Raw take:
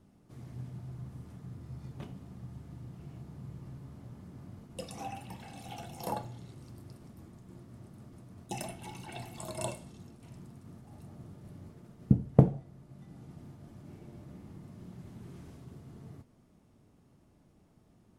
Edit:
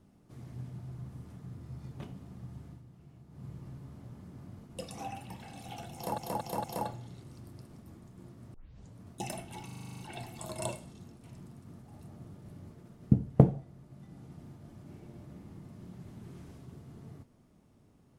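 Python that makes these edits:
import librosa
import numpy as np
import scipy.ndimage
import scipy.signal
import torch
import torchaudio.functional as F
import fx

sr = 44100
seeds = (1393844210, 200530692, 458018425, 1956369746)

y = fx.edit(x, sr, fx.fade_down_up(start_s=2.67, length_s=0.78, db=-8.5, fade_s=0.16),
    fx.stutter(start_s=5.95, slice_s=0.23, count=4),
    fx.tape_start(start_s=7.85, length_s=0.44),
    fx.stutter(start_s=8.97, slice_s=0.04, count=9), tone=tone)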